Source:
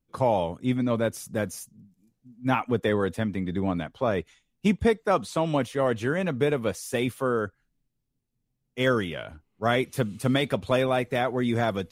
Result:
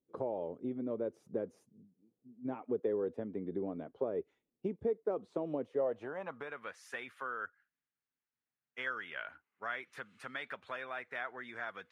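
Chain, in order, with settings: compression 4:1, threshold -31 dBFS, peak gain reduction 12.5 dB; band-pass sweep 410 Hz -> 1.6 kHz, 5.67–6.61 s; trim +3 dB

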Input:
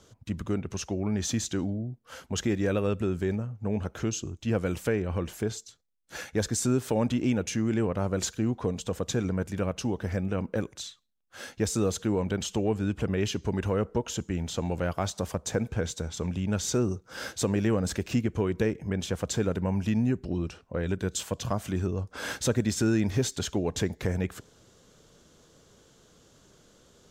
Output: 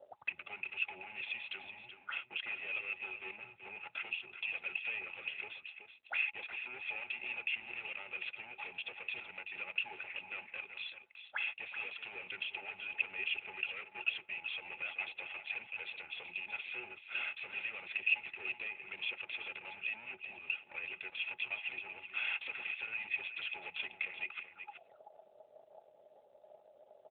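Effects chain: de-hum 170.8 Hz, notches 2; waveshaping leveller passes 3; comb 1.5 ms, depth 99%; compression 2:1, threshold -26 dBFS, peak gain reduction 7 dB; harmonic-percussive split harmonic -6 dB; hard clipper -28 dBFS, distortion -9 dB; small resonant body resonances 370/840 Hz, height 17 dB, ringing for 85 ms; auto-wah 520–2500 Hz, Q 15, up, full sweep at -33 dBFS; delay 379 ms -9.5 dB; trim +12.5 dB; AMR-NB 12.2 kbps 8 kHz

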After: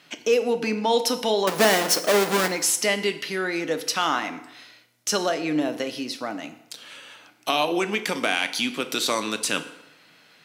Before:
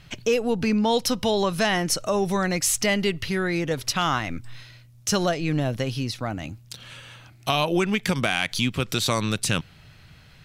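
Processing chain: 1.47–2.48 s: square wave that keeps the level; high-pass 240 Hz 24 dB/octave; FDN reverb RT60 0.88 s, low-frequency decay 0.8×, high-frequency decay 0.75×, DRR 8 dB

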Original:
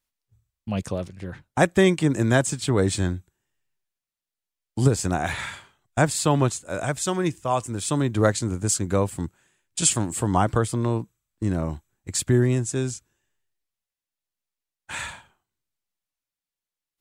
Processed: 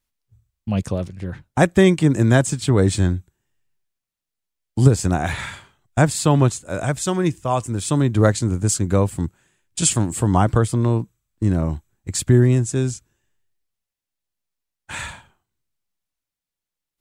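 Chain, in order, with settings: bass shelf 250 Hz +6.5 dB; trim +1.5 dB

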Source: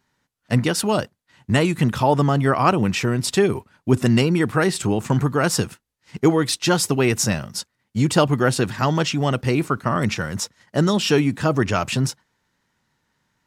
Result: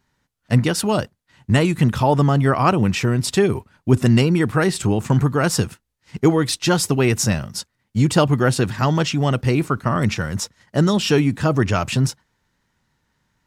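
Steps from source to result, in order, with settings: bass shelf 89 Hz +11 dB

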